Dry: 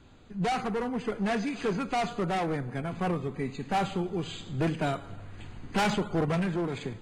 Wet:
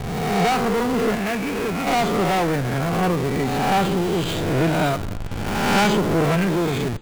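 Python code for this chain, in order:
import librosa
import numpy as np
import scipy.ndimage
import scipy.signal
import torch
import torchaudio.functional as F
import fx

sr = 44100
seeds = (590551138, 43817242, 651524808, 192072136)

p1 = fx.spec_swells(x, sr, rise_s=1.16)
p2 = fx.ladder_lowpass(p1, sr, hz=2900.0, resonance_pct=50, at=(1.15, 1.87))
p3 = fx.schmitt(p2, sr, flips_db=-37.5)
p4 = p2 + (p3 * 10.0 ** (-3.0 / 20.0))
y = p4 * 10.0 ** (3.5 / 20.0)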